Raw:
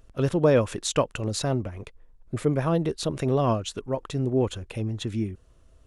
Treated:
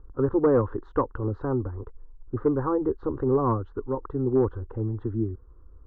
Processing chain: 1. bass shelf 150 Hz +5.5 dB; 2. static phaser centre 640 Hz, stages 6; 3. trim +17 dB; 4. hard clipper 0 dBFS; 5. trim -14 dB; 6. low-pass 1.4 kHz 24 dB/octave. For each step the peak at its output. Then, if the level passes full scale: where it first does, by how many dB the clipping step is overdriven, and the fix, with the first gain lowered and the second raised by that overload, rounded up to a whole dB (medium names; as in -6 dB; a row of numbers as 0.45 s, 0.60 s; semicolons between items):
-7.5 dBFS, -10.0 dBFS, +7.0 dBFS, 0.0 dBFS, -14.0 dBFS, -12.5 dBFS; step 3, 7.0 dB; step 3 +10 dB, step 5 -7 dB